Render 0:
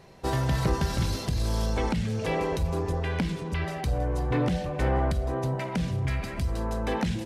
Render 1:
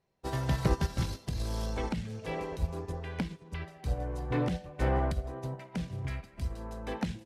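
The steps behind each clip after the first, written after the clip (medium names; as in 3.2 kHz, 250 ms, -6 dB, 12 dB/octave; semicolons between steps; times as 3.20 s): upward expansion 2.5:1, over -39 dBFS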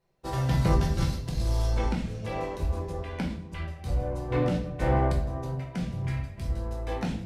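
simulated room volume 80 m³, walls mixed, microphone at 0.8 m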